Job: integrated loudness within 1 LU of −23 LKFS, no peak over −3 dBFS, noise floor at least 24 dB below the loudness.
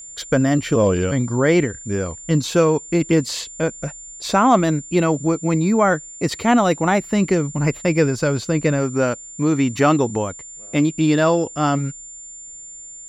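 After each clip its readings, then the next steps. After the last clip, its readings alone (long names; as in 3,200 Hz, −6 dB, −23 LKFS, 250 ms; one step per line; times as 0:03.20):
interfering tone 7,200 Hz; level of the tone −35 dBFS; integrated loudness −19.0 LKFS; sample peak −3.0 dBFS; target loudness −23.0 LKFS
→ notch filter 7,200 Hz, Q 30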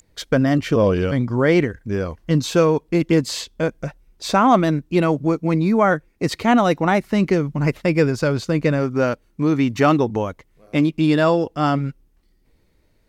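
interfering tone none found; integrated loudness −19.0 LKFS; sample peak −3.5 dBFS; target loudness −23.0 LKFS
→ level −4 dB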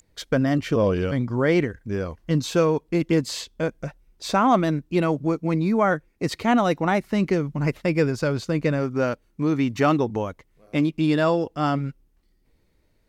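integrated loudness −23.0 LKFS; sample peak −7.5 dBFS; background noise floor −65 dBFS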